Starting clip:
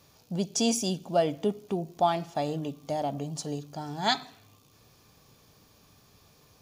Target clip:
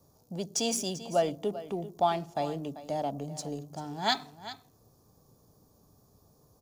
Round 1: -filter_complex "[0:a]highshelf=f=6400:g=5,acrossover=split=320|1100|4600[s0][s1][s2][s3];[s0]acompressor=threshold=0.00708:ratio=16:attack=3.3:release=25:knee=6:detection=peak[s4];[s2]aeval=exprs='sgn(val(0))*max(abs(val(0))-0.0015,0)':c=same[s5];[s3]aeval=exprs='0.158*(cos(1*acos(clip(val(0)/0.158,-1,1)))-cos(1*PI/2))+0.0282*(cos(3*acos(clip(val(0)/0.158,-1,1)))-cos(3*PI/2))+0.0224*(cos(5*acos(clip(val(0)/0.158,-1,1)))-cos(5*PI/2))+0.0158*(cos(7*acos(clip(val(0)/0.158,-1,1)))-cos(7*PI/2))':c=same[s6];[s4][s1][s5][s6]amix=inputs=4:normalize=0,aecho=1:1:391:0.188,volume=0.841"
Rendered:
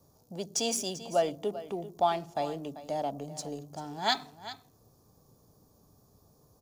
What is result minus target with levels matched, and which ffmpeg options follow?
compression: peak gain reduction +6.5 dB
-filter_complex "[0:a]highshelf=f=6400:g=5,acrossover=split=320|1100|4600[s0][s1][s2][s3];[s0]acompressor=threshold=0.0158:ratio=16:attack=3.3:release=25:knee=6:detection=peak[s4];[s2]aeval=exprs='sgn(val(0))*max(abs(val(0))-0.0015,0)':c=same[s5];[s3]aeval=exprs='0.158*(cos(1*acos(clip(val(0)/0.158,-1,1)))-cos(1*PI/2))+0.0282*(cos(3*acos(clip(val(0)/0.158,-1,1)))-cos(3*PI/2))+0.0224*(cos(5*acos(clip(val(0)/0.158,-1,1)))-cos(5*PI/2))+0.0158*(cos(7*acos(clip(val(0)/0.158,-1,1)))-cos(7*PI/2))':c=same[s6];[s4][s1][s5][s6]amix=inputs=4:normalize=0,aecho=1:1:391:0.188,volume=0.841"

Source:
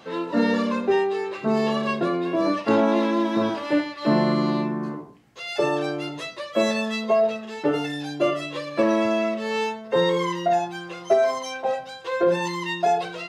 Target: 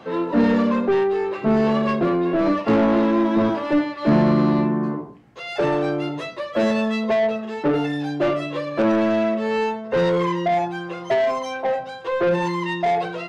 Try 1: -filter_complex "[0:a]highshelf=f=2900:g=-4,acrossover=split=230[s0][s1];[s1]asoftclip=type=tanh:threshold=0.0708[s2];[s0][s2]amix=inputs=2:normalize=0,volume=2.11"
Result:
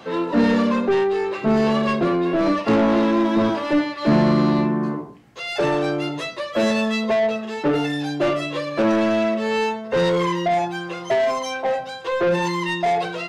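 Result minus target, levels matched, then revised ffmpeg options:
8 kHz band +7.0 dB
-filter_complex "[0:a]highshelf=f=2900:g=-13.5,acrossover=split=230[s0][s1];[s1]asoftclip=type=tanh:threshold=0.0708[s2];[s0][s2]amix=inputs=2:normalize=0,volume=2.11"

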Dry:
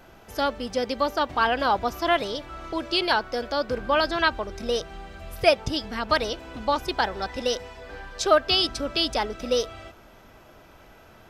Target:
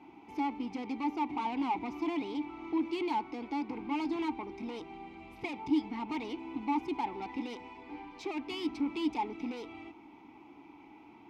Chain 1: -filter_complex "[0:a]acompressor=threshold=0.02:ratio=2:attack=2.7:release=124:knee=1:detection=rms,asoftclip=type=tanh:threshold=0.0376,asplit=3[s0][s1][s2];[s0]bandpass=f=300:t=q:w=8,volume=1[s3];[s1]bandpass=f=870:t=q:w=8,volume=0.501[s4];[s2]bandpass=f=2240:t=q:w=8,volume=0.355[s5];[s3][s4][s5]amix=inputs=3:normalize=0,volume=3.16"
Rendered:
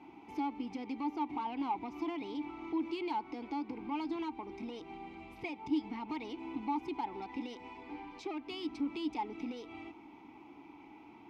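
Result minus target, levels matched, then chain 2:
compression: peak gain reduction +13.5 dB
-filter_complex "[0:a]asoftclip=type=tanh:threshold=0.0376,asplit=3[s0][s1][s2];[s0]bandpass=f=300:t=q:w=8,volume=1[s3];[s1]bandpass=f=870:t=q:w=8,volume=0.501[s4];[s2]bandpass=f=2240:t=q:w=8,volume=0.355[s5];[s3][s4][s5]amix=inputs=3:normalize=0,volume=3.16"

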